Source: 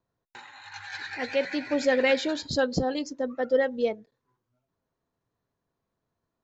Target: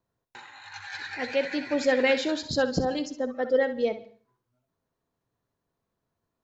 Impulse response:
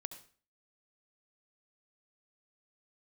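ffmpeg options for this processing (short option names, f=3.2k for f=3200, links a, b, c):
-filter_complex "[0:a]asplit=2[a][b];[1:a]atrim=start_sample=2205,adelay=64[c];[b][c]afir=irnorm=-1:irlink=0,volume=-8.5dB[d];[a][d]amix=inputs=2:normalize=0"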